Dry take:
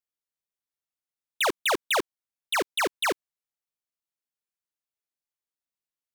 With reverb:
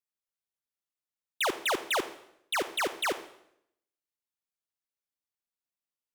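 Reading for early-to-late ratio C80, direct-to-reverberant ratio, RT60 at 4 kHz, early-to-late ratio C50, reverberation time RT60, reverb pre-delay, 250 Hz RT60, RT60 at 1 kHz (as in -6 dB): 15.5 dB, 12.0 dB, 0.70 s, 13.0 dB, 0.75 s, 38 ms, 0.85 s, 0.70 s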